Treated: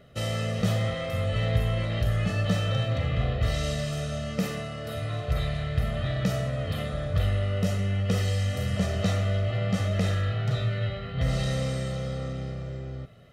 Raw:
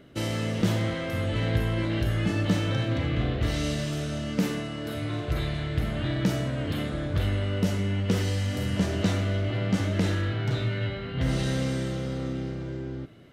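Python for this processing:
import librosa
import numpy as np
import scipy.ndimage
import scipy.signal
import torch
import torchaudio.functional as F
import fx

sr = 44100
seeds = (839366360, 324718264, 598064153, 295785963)

y = x + 0.8 * np.pad(x, (int(1.6 * sr / 1000.0), 0))[:len(x)]
y = y * librosa.db_to_amplitude(-2.5)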